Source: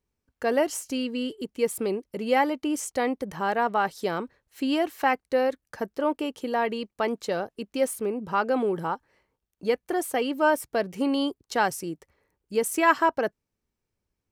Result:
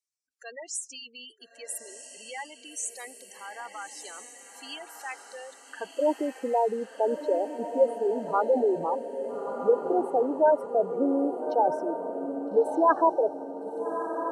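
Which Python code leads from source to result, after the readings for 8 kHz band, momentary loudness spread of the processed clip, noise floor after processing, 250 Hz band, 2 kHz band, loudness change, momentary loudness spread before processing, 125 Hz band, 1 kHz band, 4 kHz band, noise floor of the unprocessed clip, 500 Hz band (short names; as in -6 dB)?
-1.5 dB, 20 LU, -55 dBFS, -4.0 dB, -11.0 dB, 0.0 dB, 9 LU, n/a, -2.0 dB, -9.0 dB, -84 dBFS, +1.0 dB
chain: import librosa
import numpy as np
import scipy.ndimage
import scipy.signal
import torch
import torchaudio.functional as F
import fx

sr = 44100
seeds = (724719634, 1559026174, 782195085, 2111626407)

y = fx.filter_sweep_bandpass(x, sr, from_hz=7800.0, to_hz=560.0, start_s=5.5, end_s=6.06, q=0.9)
y = fx.spec_gate(y, sr, threshold_db=-10, keep='strong')
y = fx.echo_diffused(y, sr, ms=1298, feedback_pct=50, wet_db=-7.5)
y = y * 10.0 ** (3.5 / 20.0)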